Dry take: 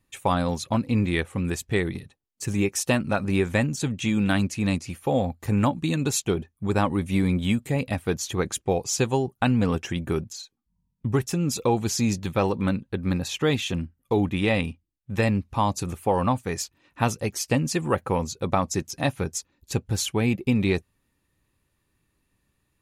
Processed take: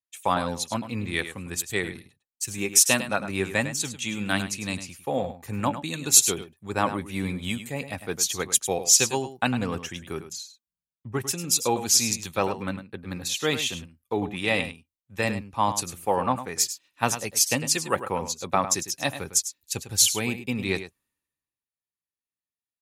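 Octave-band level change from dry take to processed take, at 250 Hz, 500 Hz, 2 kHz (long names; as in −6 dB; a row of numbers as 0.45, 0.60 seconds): −7.0, −3.0, +1.5 decibels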